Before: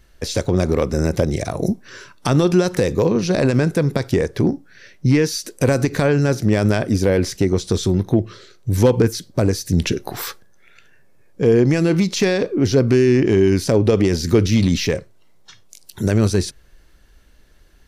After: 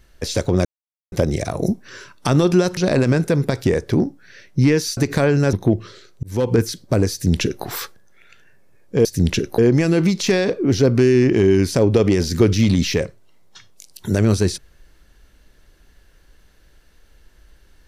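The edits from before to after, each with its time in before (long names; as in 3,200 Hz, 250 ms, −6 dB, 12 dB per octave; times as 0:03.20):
0:00.65–0:01.12: silence
0:02.77–0:03.24: remove
0:05.44–0:05.79: remove
0:06.35–0:07.99: remove
0:08.69–0:09.05: fade in
0:09.58–0:10.11: duplicate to 0:11.51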